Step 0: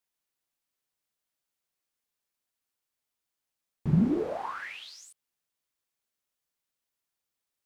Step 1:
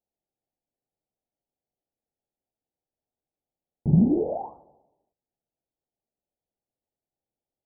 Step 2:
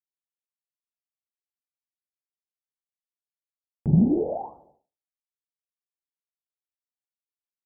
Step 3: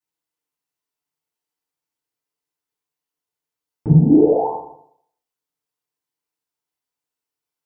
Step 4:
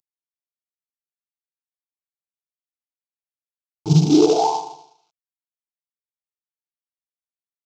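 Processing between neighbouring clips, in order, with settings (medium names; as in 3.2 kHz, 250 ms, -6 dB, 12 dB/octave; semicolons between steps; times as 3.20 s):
steep low-pass 840 Hz 72 dB/octave; trim +5 dB
expander -54 dBFS
fifteen-band graphic EQ 160 Hz +6 dB, 400 Hz +5 dB, 1 kHz +5 dB; compression, threshold -17 dBFS, peak gain reduction 8.5 dB; FDN reverb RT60 0.64 s, low-frequency decay 0.75×, high-frequency decay 0.95×, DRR -8.5 dB; trim -1 dB
CVSD coder 32 kbps; tilt EQ +3 dB/octave; static phaser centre 360 Hz, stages 8; trim +6 dB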